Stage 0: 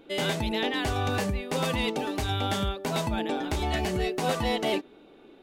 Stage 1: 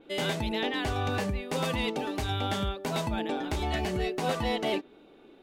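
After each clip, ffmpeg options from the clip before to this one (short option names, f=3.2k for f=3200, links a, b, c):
-af "adynamicequalizer=threshold=0.00631:dfrequency=5200:dqfactor=0.7:tfrequency=5200:tqfactor=0.7:attack=5:release=100:ratio=0.375:range=2.5:mode=cutabove:tftype=highshelf,volume=-2dB"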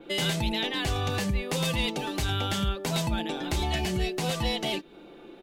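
-filter_complex "[0:a]aecho=1:1:5.8:0.41,acrossover=split=150|2800[a][b][c];[b]acompressor=threshold=-37dB:ratio=6[d];[a][d][c]amix=inputs=3:normalize=0,volume=6.5dB"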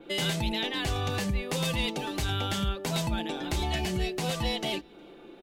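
-filter_complex "[0:a]asplit=2[a][b];[b]adelay=361.5,volume=-29dB,highshelf=f=4k:g=-8.13[c];[a][c]amix=inputs=2:normalize=0,volume=-1.5dB"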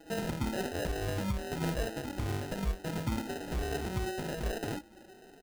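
-af "afftfilt=real='re*pow(10,20/40*sin(2*PI*(1.5*log(max(b,1)*sr/1024/100)/log(2)-(1.1)*(pts-256)/sr)))':imag='im*pow(10,20/40*sin(2*PI*(1.5*log(max(b,1)*sr/1024/100)/log(2)-(1.1)*(pts-256)/sr)))':win_size=1024:overlap=0.75,acrusher=samples=39:mix=1:aa=0.000001,volume=-8.5dB"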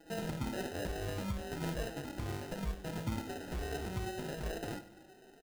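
-af "flanger=delay=5.6:depth=5.8:regen=74:speed=0.42:shape=sinusoidal,aecho=1:1:97|194|291|388:0.178|0.0818|0.0376|0.0173"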